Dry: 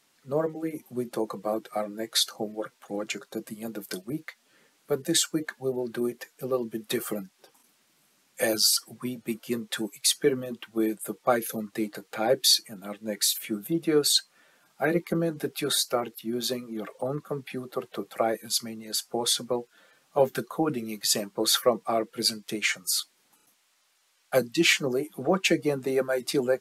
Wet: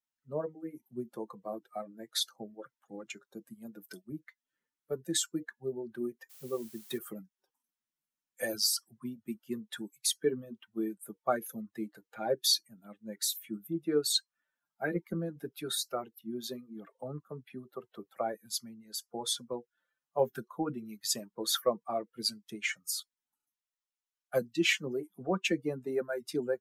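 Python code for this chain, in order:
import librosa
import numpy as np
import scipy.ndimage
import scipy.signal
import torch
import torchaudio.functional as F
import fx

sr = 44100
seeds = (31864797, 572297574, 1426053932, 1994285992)

y = fx.bin_expand(x, sr, power=1.5)
y = fx.dmg_noise_colour(y, sr, seeds[0], colour='blue', level_db=-50.0, at=(6.29, 6.97), fade=0.02)
y = y * 10.0 ** (-4.5 / 20.0)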